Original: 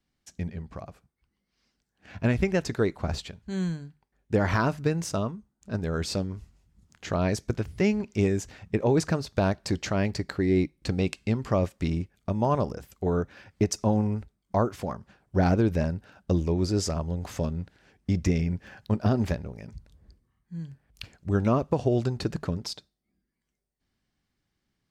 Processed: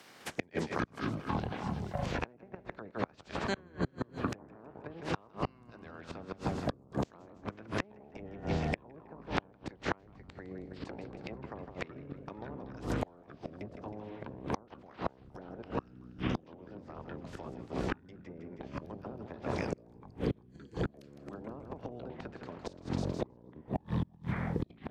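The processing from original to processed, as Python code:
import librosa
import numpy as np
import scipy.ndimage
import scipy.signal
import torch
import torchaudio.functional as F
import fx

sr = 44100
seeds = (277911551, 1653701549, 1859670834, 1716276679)

y = fx.spec_clip(x, sr, under_db=20)
y = scipy.signal.sosfilt(scipy.signal.butter(2, 150.0, 'highpass', fs=sr, output='sos'), y)
y = fx.level_steps(y, sr, step_db=22, at=(15.62, 16.35))
y = fx.env_lowpass_down(y, sr, base_hz=570.0, full_db=-21.0)
y = fx.echo_feedback(y, sr, ms=159, feedback_pct=48, wet_db=-10)
y = fx.echo_pitch(y, sr, ms=206, semitones=-7, count=3, db_per_echo=-3.0)
y = fx.gate_flip(y, sr, shuts_db=-21.0, range_db=-33)
y = fx.band_squash(y, sr, depth_pct=70)
y = F.gain(torch.from_numpy(y), 4.0).numpy()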